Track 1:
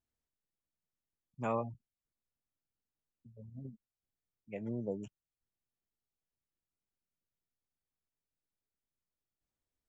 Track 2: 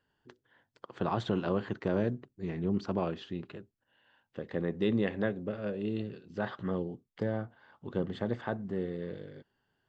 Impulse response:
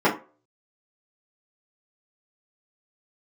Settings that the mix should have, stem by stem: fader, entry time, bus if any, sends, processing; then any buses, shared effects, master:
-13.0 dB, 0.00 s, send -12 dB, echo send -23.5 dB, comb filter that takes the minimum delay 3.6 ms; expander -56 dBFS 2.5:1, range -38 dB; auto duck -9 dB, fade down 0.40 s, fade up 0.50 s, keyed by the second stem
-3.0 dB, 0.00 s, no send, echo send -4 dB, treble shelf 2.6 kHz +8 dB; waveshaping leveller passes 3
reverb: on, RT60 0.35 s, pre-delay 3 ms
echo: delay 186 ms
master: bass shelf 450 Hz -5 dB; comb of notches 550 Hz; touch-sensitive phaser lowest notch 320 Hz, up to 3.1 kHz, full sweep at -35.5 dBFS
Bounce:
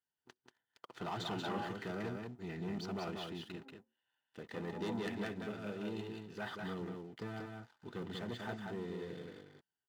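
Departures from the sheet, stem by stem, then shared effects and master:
stem 2 -3.0 dB -> -14.0 dB; master: missing touch-sensitive phaser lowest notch 320 Hz, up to 3.1 kHz, full sweep at -35.5 dBFS

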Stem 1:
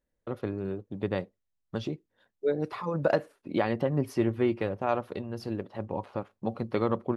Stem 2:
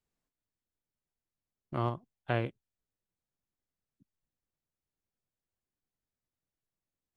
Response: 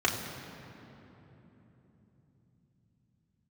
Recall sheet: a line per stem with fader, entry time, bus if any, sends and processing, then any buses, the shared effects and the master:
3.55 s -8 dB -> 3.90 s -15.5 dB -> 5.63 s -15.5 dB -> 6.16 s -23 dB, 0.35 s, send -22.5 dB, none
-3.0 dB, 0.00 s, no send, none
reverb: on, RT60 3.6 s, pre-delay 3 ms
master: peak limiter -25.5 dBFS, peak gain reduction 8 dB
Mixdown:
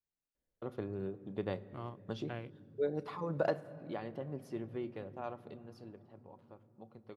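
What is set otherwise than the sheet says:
stem 2 -3.0 dB -> -12.5 dB; master: missing peak limiter -25.5 dBFS, peak gain reduction 8 dB

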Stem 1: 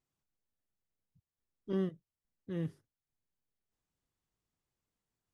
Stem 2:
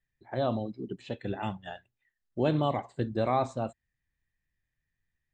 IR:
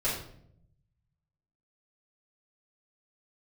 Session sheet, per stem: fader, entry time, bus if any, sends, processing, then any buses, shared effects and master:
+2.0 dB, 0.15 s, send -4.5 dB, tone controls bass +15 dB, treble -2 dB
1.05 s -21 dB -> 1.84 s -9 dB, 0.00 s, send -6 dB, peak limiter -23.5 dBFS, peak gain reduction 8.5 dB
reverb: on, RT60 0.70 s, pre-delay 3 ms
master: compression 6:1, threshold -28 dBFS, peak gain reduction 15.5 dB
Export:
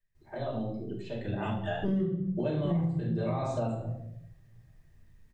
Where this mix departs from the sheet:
stem 2 -21.0 dB -> -11.0 dB; reverb return +6.5 dB

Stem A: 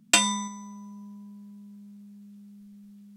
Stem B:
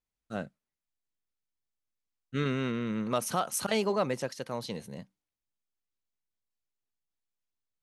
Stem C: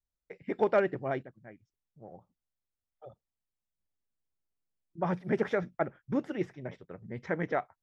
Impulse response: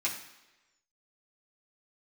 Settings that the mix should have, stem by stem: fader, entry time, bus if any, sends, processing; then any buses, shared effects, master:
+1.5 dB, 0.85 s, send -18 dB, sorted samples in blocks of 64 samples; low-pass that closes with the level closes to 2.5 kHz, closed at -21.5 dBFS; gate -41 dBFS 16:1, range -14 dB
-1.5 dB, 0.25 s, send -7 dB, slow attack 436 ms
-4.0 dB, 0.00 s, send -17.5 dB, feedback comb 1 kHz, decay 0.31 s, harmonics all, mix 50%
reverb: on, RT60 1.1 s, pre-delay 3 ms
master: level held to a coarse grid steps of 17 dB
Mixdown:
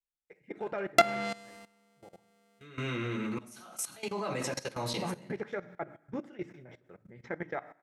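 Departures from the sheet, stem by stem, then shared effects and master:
stem C: missing feedback comb 1 kHz, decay 0.31 s, harmonics all, mix 50%; reverb return +9.0 dB

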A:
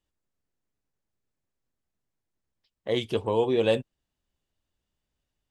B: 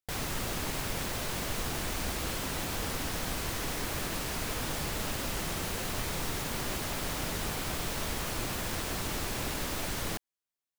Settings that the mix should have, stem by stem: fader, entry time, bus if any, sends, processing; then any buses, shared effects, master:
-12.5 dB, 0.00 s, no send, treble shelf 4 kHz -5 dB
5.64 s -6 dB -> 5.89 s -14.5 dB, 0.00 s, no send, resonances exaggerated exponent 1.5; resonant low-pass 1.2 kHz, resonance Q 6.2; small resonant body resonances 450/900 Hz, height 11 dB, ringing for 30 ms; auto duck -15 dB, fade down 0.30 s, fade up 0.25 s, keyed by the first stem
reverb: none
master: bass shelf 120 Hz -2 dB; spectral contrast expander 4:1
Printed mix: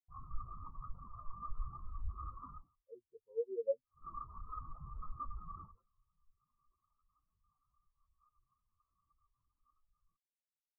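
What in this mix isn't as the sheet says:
stem A -12.5 dB -> -18.5 dB; stem B: missing small resonant body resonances 450/900 Hz, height 11 dB, ringing for 30 ms

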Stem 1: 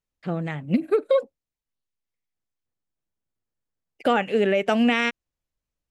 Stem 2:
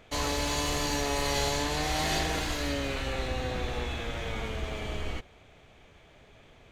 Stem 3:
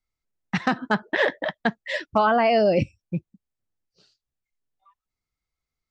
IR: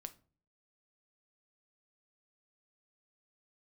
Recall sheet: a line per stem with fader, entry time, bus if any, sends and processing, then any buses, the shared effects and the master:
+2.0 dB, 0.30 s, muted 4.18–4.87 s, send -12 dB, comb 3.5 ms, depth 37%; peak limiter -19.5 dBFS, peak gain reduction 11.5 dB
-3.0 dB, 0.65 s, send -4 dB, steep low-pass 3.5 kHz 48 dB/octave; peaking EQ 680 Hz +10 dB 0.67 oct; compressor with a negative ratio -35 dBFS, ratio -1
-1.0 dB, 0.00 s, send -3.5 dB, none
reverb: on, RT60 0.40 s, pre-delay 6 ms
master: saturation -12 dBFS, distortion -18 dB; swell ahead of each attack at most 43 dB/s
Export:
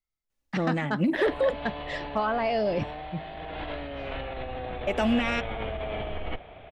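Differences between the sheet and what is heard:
stem 2: entry 0.65 s -> 1.15 s; stem 3 -1.0 dB -> -10.0 dB; master: missing swell ahead of each attack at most 43 dB/s

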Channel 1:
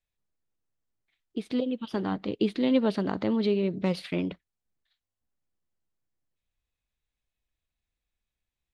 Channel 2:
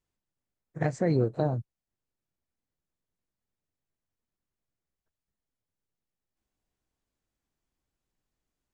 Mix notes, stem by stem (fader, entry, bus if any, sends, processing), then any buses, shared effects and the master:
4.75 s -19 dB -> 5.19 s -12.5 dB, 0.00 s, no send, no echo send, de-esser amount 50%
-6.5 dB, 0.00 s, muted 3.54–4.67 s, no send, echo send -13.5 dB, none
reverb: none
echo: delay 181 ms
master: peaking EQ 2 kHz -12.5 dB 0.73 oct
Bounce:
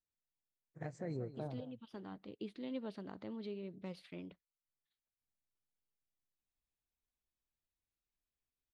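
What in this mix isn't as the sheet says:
stem 2 -6.5 dB -> -16.5 dB; master: missing peaking EQ 2 kHz -12.5 dB 0.73 oct

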